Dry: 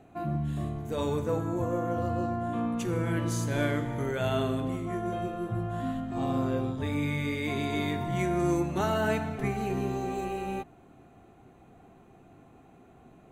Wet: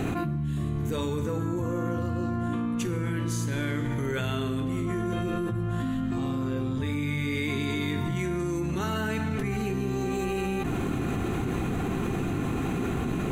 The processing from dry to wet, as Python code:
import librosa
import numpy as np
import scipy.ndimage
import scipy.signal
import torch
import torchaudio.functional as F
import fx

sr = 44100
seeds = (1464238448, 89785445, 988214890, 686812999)

y = fx.peak_eq(x, sr, hz=680.0, db=-12.0, octaves=0.8)
y = fx.env_flatten(y, sr, amount_pct=100)
y = y * librosa.db_to_amplitude(-2.5)